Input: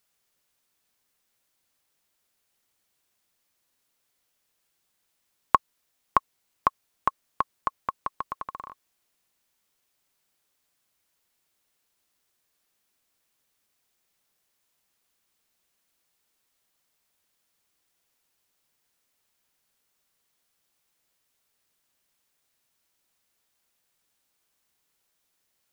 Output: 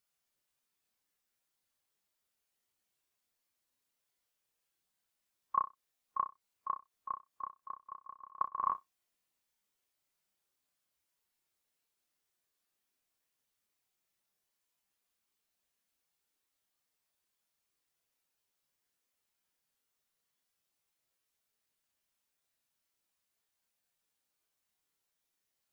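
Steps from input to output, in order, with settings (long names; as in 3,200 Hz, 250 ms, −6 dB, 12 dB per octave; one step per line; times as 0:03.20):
flutter between parallel walls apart 5.4 metres, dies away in 0.21 s
volume swells 276 ms
every bin expanded away from the loudest bin 1.5 to 1
level +11.5 dB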